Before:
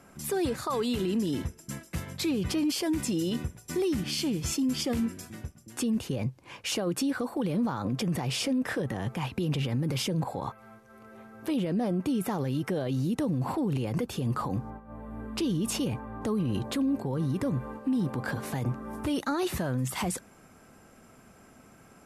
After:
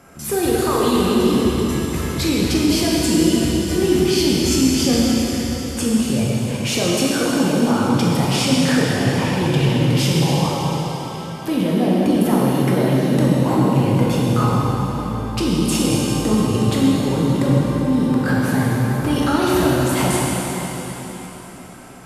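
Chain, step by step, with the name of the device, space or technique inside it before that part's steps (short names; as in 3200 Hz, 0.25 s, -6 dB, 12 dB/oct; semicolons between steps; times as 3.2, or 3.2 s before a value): cathedral (reverb RT60 4.3 s, pre-delay 13 ms, DRR -6 dB); gain +6.5 dB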